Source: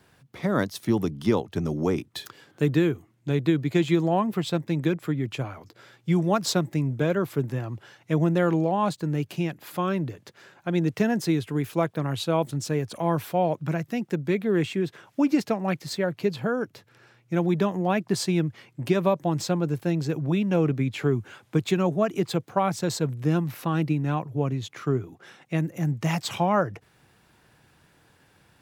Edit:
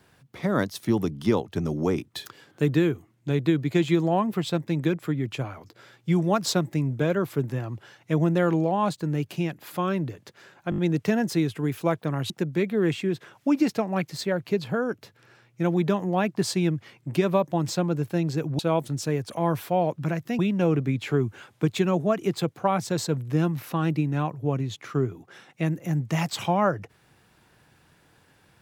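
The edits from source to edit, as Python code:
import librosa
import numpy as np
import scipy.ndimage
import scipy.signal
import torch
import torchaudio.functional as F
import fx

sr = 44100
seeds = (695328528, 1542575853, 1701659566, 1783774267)

y = fx.edit(x, sr, fx.stutter(start_s=10.7, slice_s=0.02, count=5),
    fx.move(start_s=12.22, length_s=1.8, to_s=20.31), tone=tone)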